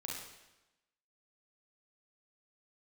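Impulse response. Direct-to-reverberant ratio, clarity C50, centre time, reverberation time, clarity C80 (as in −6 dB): −3.0 dB, 0.0 dB, 66 ms, 1.0 s, 3.5 dB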